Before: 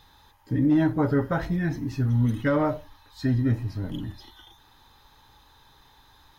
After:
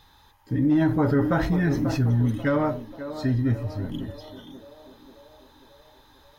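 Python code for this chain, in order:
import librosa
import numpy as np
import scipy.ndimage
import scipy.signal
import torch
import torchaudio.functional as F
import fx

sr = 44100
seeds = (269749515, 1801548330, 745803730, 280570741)

p1 = x + fx.echo_banded(x, sr, ms=538, feedback_pct=63, hz=550.0, wet_db=-10, dry=0)
y = fx.env_flatten(p1, sr, amount_pct=50, at=(0.81, 2.15))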